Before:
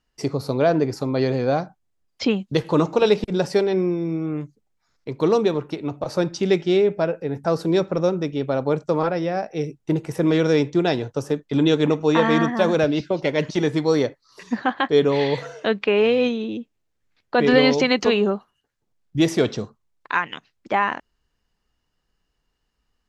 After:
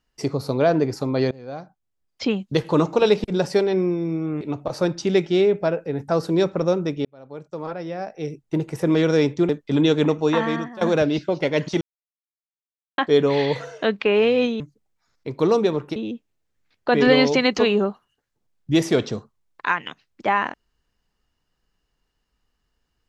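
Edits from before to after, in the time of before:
0:01.31–0:02.56: fade in linear, from −23.5 dB
0:04.41–0:05.77: move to 0:16.42
0:08.41–0:10.21: fade in
0:10.85–0:11.31: remove
0:11.98–0:12.63: fade out, to −19.5 dB
0:13.63–0:14.80: silence

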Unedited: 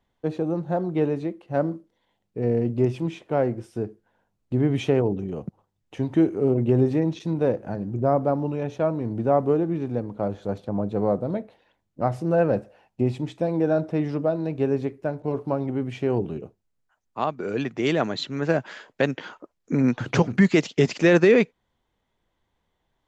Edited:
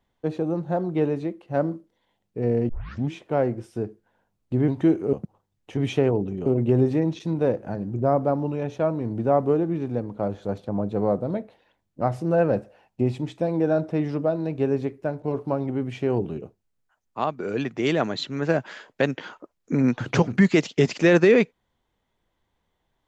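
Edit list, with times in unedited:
0:02.69: tape start 0.43 s
0:04.68–0:05.37: swap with 0:06.01–0:06.46

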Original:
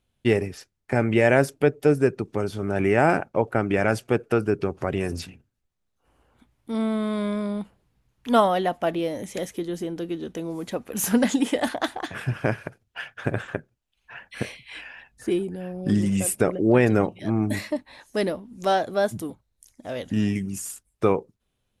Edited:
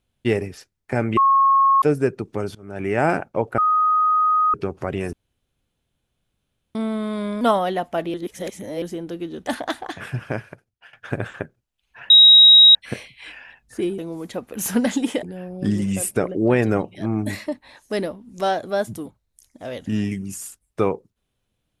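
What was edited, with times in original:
0:01.17–0:01.82: beep over 1,090 Hz −12 dBFS
0:02.55–0:03.05: fade in, from −23 dB
0:03.58–0:04.54: beep over 1,250 Hz −14.5 dBFS
0:05.13–0:06.75: fill with room tone
0:07.41–0:08.30: remove
0:09.03–0:09.71: reverse
0:10.36–0:11.61: move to 0:15.47
0:12.17–0:13.07: fade out, to −17 dB
0:14.24: insert tone 3,810 Hz −6 dBFS 0.65 s

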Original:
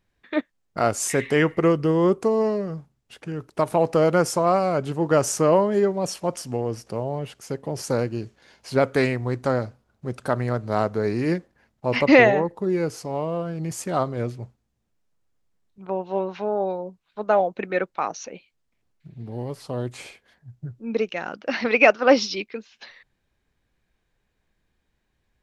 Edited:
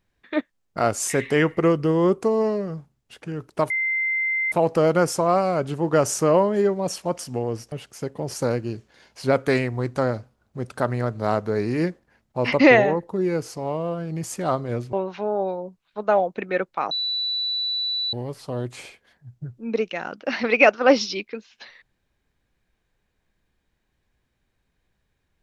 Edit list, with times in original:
0:03.70: insert tone 2,080 Hz −20.5 dBFS 0.82 s
0:06.90–0:07.20: remove
0:14.41–0:16.14: remove
0:18.12–0:19.34: beep over 3,960 Hz −22.5 dBFS

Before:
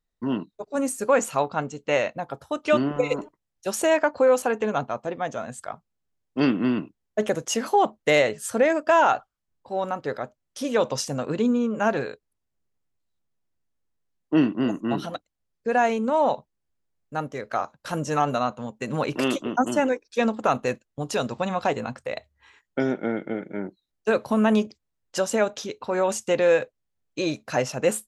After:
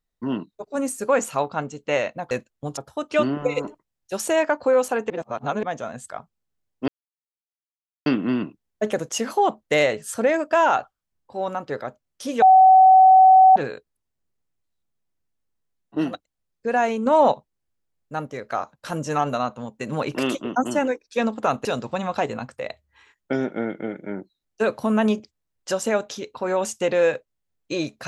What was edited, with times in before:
0:04.64–0:05.17: reverse
0:06.42: splice in silence 1.18 s
0:10.78–0:11.92: beep over 756 Hz −8 dBFS
0:14.40–0:15.05: remove, crossfade 0.24 s
0:16.07–0:16.33: clip gain +5 dB
0:20.66–0:21.12: move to 0:02.31

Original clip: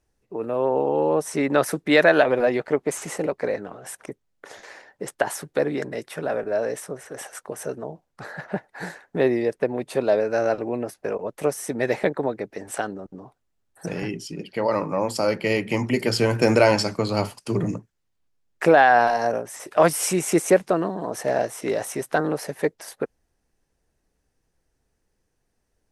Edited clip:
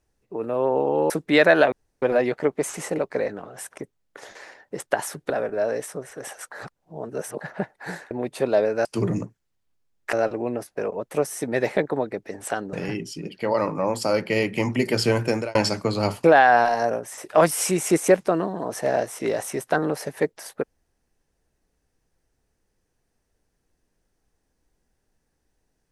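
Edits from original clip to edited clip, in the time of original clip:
0:01.10–0:01.68: remove
0:02.30: splice in room tone 0.30 s
0:05.58–0:06.24: remove
0:07.46–0:08.35: reverse
0:09.05–0:09.66: remove
0:13.00–0:13.87: remove
0:16.28–0:16.69: fade out
0:17.38–0:18.66: move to 0:10.40

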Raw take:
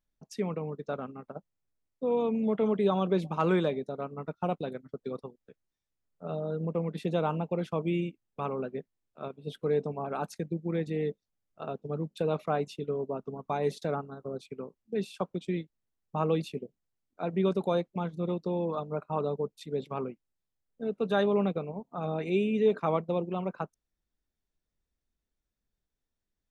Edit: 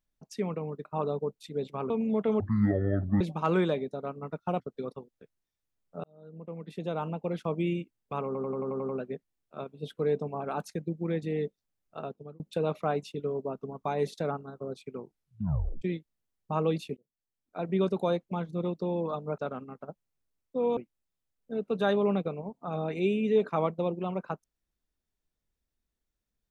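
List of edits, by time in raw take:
0:00.85–0:02.24: swap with 0:19.02–0:20.07
0:02.74–0:03.16: play speed 52%
0:04.55–0:04.87: remove
0:06.31–0:07.78: fade in
0:08.53: stutter 0.09 s, 8 plays
0:11.64–0:12.04: fade out
0:14.59: tape stop 0.87 s
0:16.61–0:17.35: fade in

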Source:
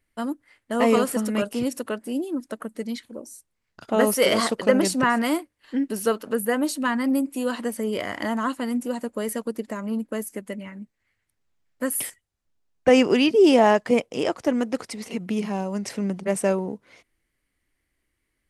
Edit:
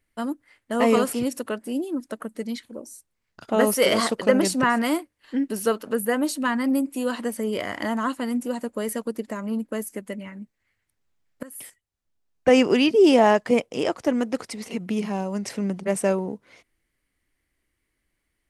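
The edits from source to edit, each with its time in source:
0:01.13–0:01.53: remove
0:11.83–0:13.19: fade in equal-power, from −21.5 dB

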